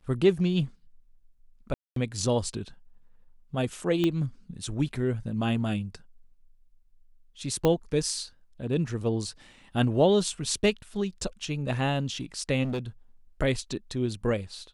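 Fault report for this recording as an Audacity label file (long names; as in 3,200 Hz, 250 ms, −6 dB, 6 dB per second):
1.740000	1.960000	drop-out 223 ms
4.040000	4.040000	click −14 dBFS
7.650000	7.650000	click −11 dBFS
12.630000	12.790000	clipping −27 dBFS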